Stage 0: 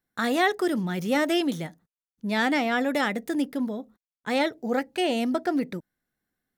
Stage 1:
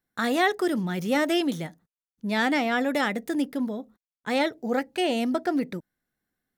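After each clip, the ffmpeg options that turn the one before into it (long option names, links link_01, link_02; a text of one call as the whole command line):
ffmpeg -i in.wav -af anull out.wav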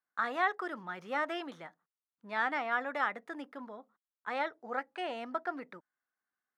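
ffmpeg -i in.wav -af "bandpass=frequency=1200:width_type=q:width=2.2:csg=0" out.wav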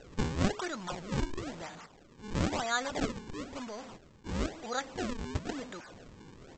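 ffmpeg -i in.wav -af "aeval=exprs='val(0)+0.5*0.00841*sgn(val(0))':channel_layout=same,aresample=16000,acrusher=samples=14:mix=1:aa=0.000001:lfo=1:lforange=22.4:lforate=1,aresample=44100" out.wav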